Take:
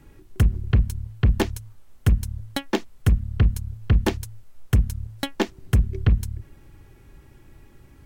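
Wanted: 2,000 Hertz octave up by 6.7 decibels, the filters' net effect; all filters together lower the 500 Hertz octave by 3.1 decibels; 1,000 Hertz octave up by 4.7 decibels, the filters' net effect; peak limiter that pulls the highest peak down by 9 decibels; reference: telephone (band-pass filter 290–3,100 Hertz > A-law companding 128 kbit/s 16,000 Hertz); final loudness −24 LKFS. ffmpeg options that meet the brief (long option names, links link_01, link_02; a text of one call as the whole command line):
ffmpeg -i in.wav -af "equalizer=frequency=500:width_type=o:gain=-4.5,equalizer=frequency=1000:width_type=o:gain=5.5,equalizer=frequency=2000:width_type=o:gain=7.5,alimiter=limit=-15dB:level=0:latency=1,highpass=290,lowpass=3100,volume=13.5dB" -ar 16000 -c:a pcm_alaw out.wav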